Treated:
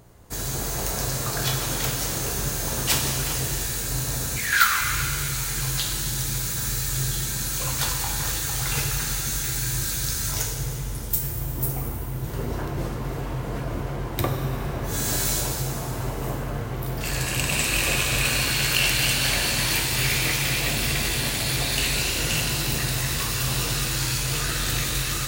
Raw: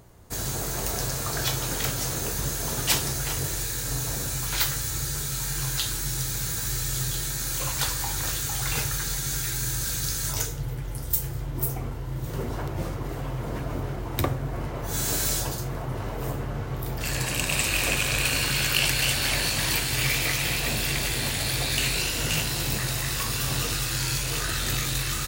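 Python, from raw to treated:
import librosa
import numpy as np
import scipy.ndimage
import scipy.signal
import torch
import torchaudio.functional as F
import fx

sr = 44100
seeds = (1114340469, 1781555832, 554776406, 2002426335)

y = fx.highpass_res(x, sr, hz=fx.line((4.36, 2300.0), (4.8, 1000.0)), q=12.0, at=(4.36, 4.8), fade=0.02)
y = fx.rev_shimmer(y, sr, seeds[0], rt60_s=2.4, semitones=7, shimmer_db=-8, drr_db=3.0)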